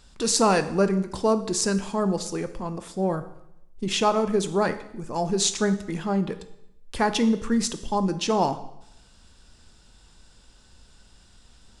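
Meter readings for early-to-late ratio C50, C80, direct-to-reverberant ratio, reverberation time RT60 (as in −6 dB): 13.0 dB, 15.5 dB, 10.0 dB, 0.80 s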